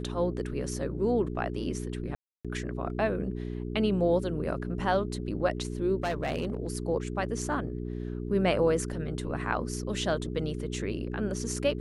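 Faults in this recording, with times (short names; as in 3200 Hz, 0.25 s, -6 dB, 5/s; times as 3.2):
hum 60 Hz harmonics 7 -35 dBFS
2.15–2.45 gap 0.296 s
5.96–6.67 clipped -25.5 dBFS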